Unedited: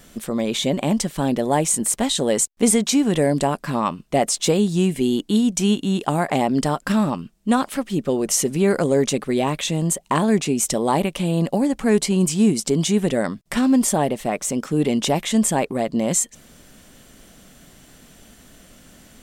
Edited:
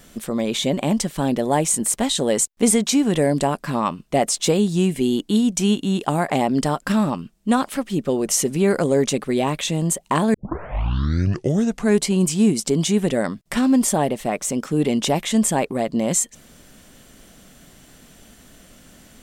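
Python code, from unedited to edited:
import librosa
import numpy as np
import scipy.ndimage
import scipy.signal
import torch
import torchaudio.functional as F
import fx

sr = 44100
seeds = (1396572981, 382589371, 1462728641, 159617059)

y = fx.edit(x, sr, fx.tape_start(start_s=10.34, length_s=1.62), tone=tone)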